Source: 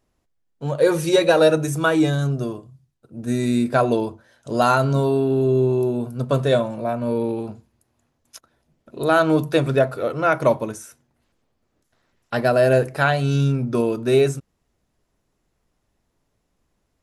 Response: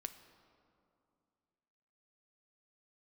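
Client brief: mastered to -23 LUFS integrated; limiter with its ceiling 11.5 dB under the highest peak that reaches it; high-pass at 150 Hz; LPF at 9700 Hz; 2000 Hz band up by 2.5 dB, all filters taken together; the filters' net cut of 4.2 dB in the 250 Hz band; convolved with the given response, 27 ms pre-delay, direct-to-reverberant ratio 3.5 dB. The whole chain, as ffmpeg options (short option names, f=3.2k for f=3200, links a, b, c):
-filter_complex "[0:a]highpass=150,lowpass=9.7k,equalizer=f=250:t=o:g=-5,equalizer=f=2k:t=o:g=4,alimiter=limit=-14.5dB:level=0:latency=1,asplit=2[a][b];[1:a]atrim=start_sample=2205,adelay=27[c];[b][c]afir=irnorm=-1:irlink=0,volume=0dB[d];[a][d]amix=inputs=2:normalize=0,volume=1dB"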